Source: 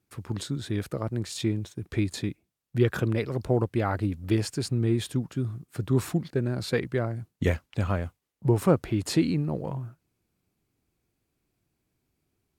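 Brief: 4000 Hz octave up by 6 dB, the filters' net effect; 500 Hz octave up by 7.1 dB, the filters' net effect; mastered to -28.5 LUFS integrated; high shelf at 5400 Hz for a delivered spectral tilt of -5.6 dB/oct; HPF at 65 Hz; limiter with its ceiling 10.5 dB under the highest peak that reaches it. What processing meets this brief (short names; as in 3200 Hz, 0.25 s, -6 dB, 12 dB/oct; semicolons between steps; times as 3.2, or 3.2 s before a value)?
HPF 65 Hz; bell 500 Hz +9 dB; bell 4000 Hz +4 dB; high shelf 5400 Hz +7 dB; gain -1.5 dB; limiter -15 dBFS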